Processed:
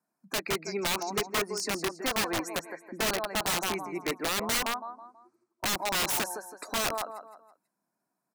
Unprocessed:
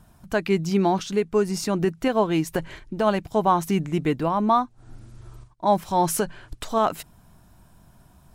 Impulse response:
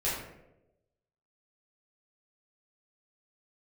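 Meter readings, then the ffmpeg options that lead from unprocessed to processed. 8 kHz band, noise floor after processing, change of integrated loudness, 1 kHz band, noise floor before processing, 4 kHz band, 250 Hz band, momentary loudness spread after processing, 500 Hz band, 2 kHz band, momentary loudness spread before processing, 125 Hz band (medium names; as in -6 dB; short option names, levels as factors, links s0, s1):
+3.0 dB, -84 dBFS, -6.5 dB, -10.0 dB, -55 dBFS, +5.0 dB, -13.0 dB, 9 LU, -10.5 dB, +2.5 dB, 8 LU, -15.0 dB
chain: -filter_complex "[0:a]highpass=f=230:w=0.5412,highpass=f=230:w=1.3066,afftdn=nr=22:nf=-39,acrossover=split=460|1500[s0][s1][s2];[s0]acompressor=threshold=0.0112:ratio=4[s3];[s3][s1][s2]amix=inputs=3:normalize=0,asuperstop=centerf=3200:order=8:qfactor=2.2,asplit=2[s4][s5];[s5]aecho=0:1:163|326|489|652:0.299|0.11|0.0409|0.0151[s6];[s4][s6]amix=inputs=2:normalize=0,aeval=exprs='(mod(11.2*val(0)+1,2)-1)/11.2':c=same,volume=0.841"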